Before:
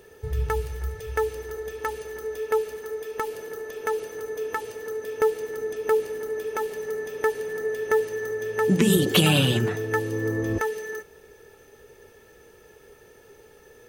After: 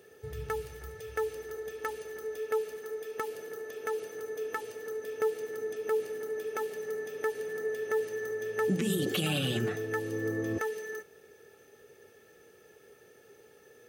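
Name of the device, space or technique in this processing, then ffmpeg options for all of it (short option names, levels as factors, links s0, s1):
PA system with an anti-feedback notch: -af "highpass=120,asuperstop=centerf=960:order=4:qfactor=5.3,alimiter=limit=0.178:level=0:latency=1:release=129,volume=0.531"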